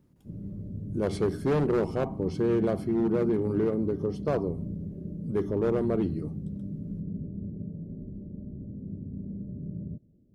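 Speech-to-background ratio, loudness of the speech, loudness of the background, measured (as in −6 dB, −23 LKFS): 9.5 dB, −28.5 LKFS, −38.0 LKFS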